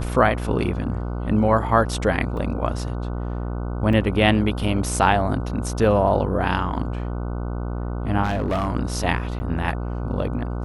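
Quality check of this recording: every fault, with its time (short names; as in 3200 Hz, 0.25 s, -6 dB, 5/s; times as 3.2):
buzz 60 Hz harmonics 25 -27 dBFS
2.37 gap 3.1 ms
3.93 gap 3.4 ms
8.23–8.68 clipped -18.5 dBFS
9.39–9.4 gap 10 ms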